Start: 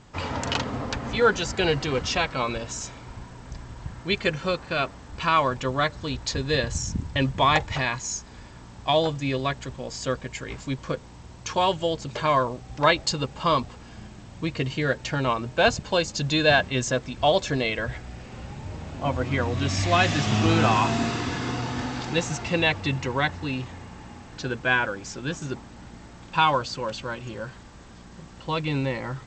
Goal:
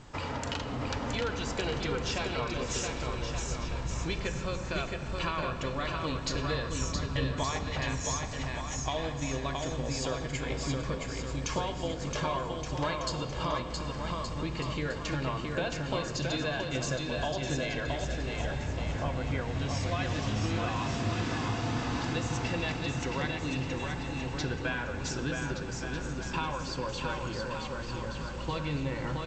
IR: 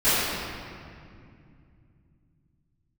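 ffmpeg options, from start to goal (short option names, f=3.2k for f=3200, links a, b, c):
-filter_complex "[0:a]acompressor=threshold=-33dB:ratio=6,aecho=1:1:670|1172|1549|1832|2044:0.631|0.398|0.251|0.158|0.1,asplit=2[a][b];[1:a]atrim=start_sample=2205,lowshelf=f=130:g=8.5[c];[b][c]afir=irnorm=-1:irlink=0,volume=-26.5dB[d];[a][d]amix=inputs=2:normalize=0"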